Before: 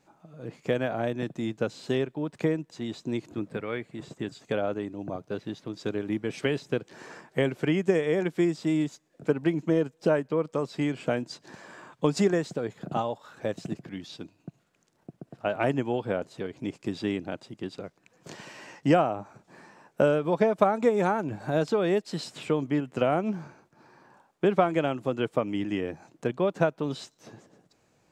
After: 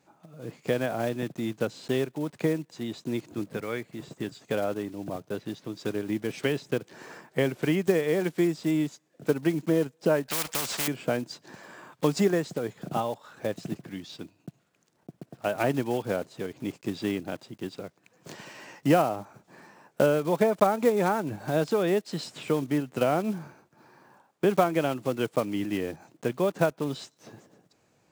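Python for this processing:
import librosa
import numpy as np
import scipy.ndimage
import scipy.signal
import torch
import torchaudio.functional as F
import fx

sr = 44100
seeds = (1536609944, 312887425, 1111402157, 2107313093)

y = fx.block_float(x, sr, bits=5)
y = scipy.signal.sosfilt(scipy.signal.butter(2, 63.0, 'highpass', fs=sr, output='sos'), y)
y = fx.spectral_comp(y, sr, ratio=4.0, at=(10.28, 10.88))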